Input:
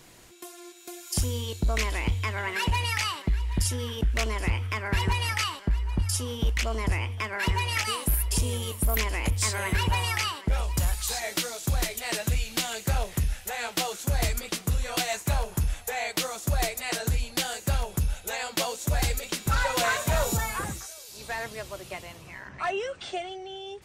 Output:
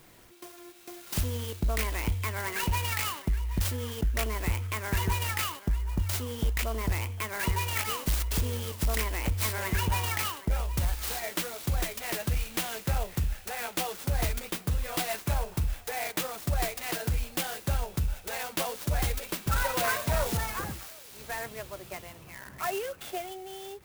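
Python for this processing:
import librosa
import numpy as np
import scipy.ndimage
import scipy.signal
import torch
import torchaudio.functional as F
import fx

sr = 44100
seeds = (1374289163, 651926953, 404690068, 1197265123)

y = fx.clock_jitter(x, sr, seeds[0], jitter_ms=0.051)
y = y * 10.0 ** (-2.5 / 20.0)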